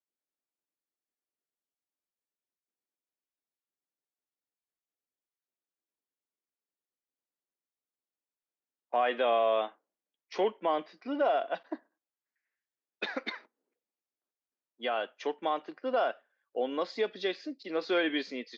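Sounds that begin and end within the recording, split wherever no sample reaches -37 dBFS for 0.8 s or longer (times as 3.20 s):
8.93–11.75 s
13.02–13.36 s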